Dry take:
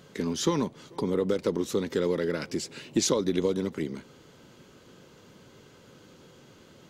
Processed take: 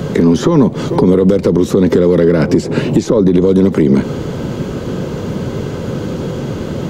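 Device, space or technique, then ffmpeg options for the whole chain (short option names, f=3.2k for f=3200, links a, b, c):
mastering chain: -filter_complex "[0:a]equalizer=f=300:t=o:w=0.77:g=-2.5,acrossover=split=180|1700[a][b][c];[a]acompressor=threshold=-49dB:ratio=4[d];[b]acompressor=threshold=-35dB:ratio=4[e];[c]acompressor=threshold=-50dB:ratio=4[f];[d][e][f]amix=inputs=3:normalize=0,acompressor=threshold=-39dB:ratio=2.5,asoftclip=type=tanh:threshold=-32dB,tiltshelf=f=890:g=8,alimiter=level_in=30dB:limit=-1dB:release=50:level=0:latency=1,volume=-1dB"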